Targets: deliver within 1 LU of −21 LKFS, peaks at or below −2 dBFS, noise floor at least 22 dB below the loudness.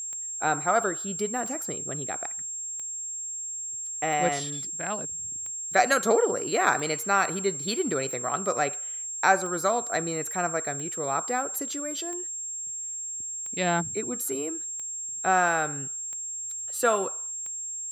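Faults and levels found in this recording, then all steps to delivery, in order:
number of clicks 14; interfering tone 7,500 Hz; level of the tone −32 dBFS; integrated loudness −27.5 LKFS; sample peak −6.5 dBFS; target loudness −21.0 LKFS
→ click removal
notch filter 7,500 Hz, Q 30
level +6.5 dB
brickwall limiter −2 dBFS

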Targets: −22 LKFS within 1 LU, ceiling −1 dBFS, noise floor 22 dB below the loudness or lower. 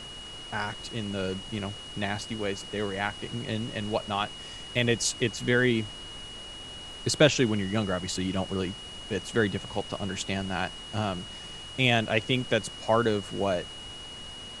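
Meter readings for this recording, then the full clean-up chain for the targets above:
interfering tone 2,900 Hz; level of the tone −41 dBFS; background noise floor −42 dBFS; target noise floor −51 dBFS; integrated loudness −29.0 LKFS; sample peak −6.0 dBFS; target loudness −22.0 LKFS
→ notch filter 2,900 Hz, Q 30
broadband denoise 9 dB, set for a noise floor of −42 dBFS
level +7 dB
brickwall limiter −1 dBFS

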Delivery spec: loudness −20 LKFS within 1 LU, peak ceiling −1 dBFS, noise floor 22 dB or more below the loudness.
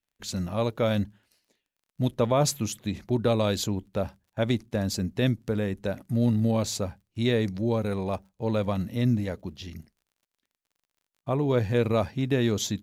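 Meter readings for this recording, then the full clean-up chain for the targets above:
crackle rate 31 per second; integrated loudness −27.5 LKFS; sample peak −12.0 dBFS; target loudness −20.0 LKFS
→ click removal
level +7.5 dB

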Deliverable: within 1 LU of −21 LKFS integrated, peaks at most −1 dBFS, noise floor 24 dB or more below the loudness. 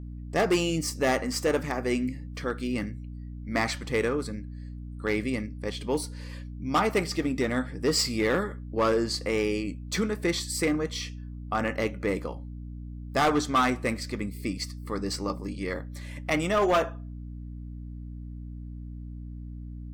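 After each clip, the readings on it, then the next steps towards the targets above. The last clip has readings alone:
share of clipped samples 0.9%; peaks flattened at −18.0 dBFS; mains hum 60 Hz; hum harmonics up to 300 Hz; level of the hum −36 dBFS; integrated loudness −28.5 LKFS; sample peak −18.0 dBFS; target loudness −21.0 LKFS
→ clipped peaks rebuilt −18 dBFS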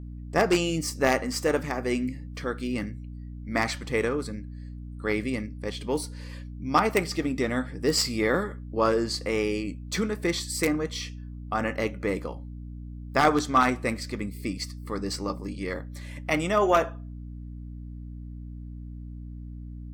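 share of clipped samples 0.0%; mains hum 60 Hz; hum harmonics up to 240 Hz; level of the hum −36 dBFS
→ mains-hum notches 60/120/180/240 Hz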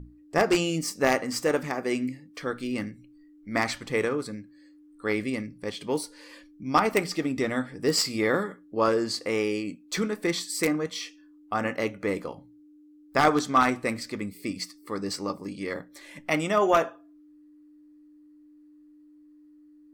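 mains hum none found; integrated loudness −27.5 LKFS; sample peak −8.5 dBFS; target loudness −21.0 LKFS
→ level +6.5 dB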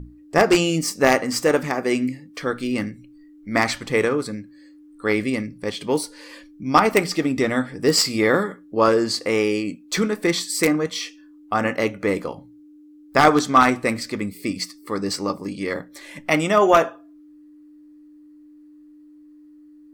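integrated loudness −21.0 LKFS; sample peak −2.0 dBFS; background noise floor −48 dBFS

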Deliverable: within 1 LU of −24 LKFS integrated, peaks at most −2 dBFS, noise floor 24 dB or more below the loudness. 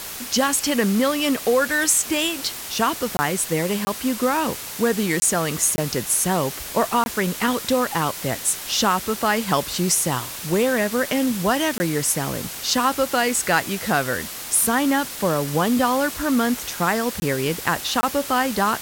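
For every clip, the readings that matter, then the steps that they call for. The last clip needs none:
number of dropouts 8; longest dropout 20 ms; background noise floor −33 dBFS; target noise floor −45 dBFS; integrated loudness −21.0 LKFS; sample peak −5.0 dBFS; target loudness −24.0 LKFS
→ repair the gap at 0:03.17/0:03.85/0:05.20/0:05.76/0:07.04/0:11.78/0:17.20/0:18.01, 20 ms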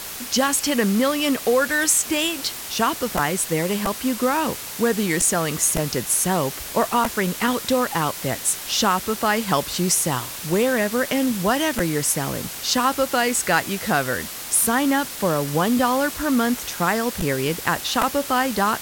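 number of dropouts 0; background noise floor −33 dBFS; target noise floor −45 dBFS
→ broadband denoise 12 dB, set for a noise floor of −33 dBFS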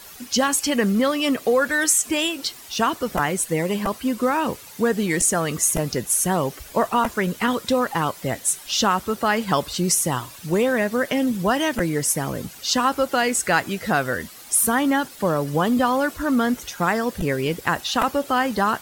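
background noise floor −42 dBFS; target noise floor −46 dBFS
→ broadband denoise 6 dB, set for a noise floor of −42 dBFS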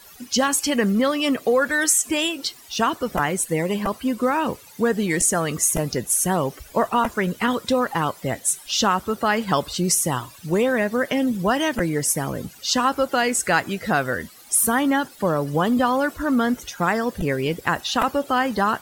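background noise floor −46 dBFS; integrated loudness −21.5 LKFS; sample peak −5.5 dBFS; target loudness −24.0 LKFS
→ level −2.5 dB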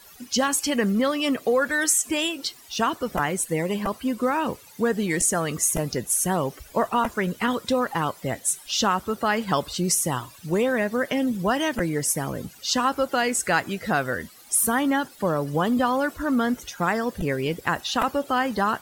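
integrated loudness −24.0 LKFS; sample peak −8.0 dBFS; background noise floor −49 dBFS

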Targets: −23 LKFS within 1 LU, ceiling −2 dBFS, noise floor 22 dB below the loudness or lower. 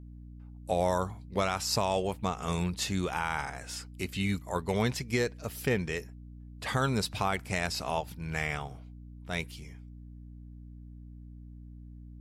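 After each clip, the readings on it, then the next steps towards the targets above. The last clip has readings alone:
mains hum 60 Hz; hum harmonics up to 300 Hz; level of the hum −44 dBFS; integrated loudness −32.0 LKFS; sample peak −16.0 dBFS; target loudness −23.0 LKFS
→ hum removal 60 Hz, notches 5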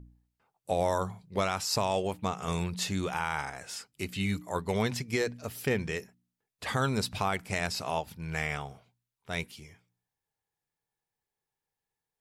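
mains hum none found; integrated loudness −32.0 LKFS; sample peak −15.5 dBFS; target loudness −23.0 LKFS
→ level +9 dB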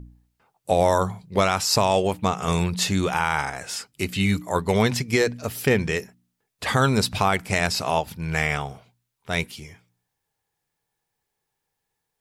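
integrated loudness −23.0 LKFS; sample peak −6.5 dBFS; background noise floor −81 dBFS

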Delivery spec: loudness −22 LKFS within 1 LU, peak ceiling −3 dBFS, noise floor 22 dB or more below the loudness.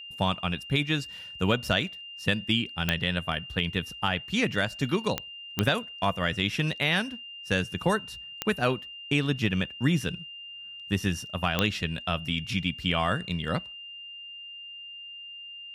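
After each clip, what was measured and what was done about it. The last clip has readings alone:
number of clicks 5; interfering tone 2,800 Hz; level of the tone −40 dBFS; integrated loudness −28.5 LKFS; sample peak −7.5 dBFS; target loudness −22.0 LKFS
→ click removal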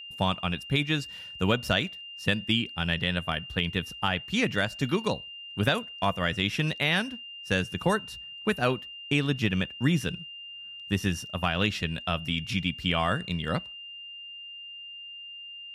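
number of clicks 0; interfering tone 2,800 Hz; level of the tone −40 dBFS
→ notch filter 2,800 Hz, Q 30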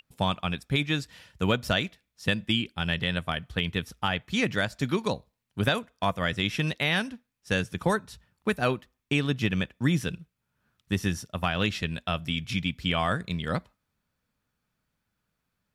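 interfering tone none found; integrated loudness −28.5 LKFS; sample peak −11.5 dBFS; target loudness −22.0 LKFS
→ level +6.5 dB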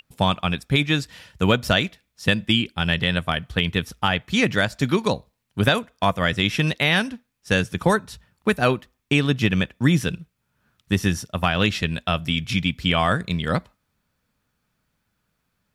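integrated loudness −22.0 LKFS; sample peak −5.0 dBFS; background noise floor −75 dBFS

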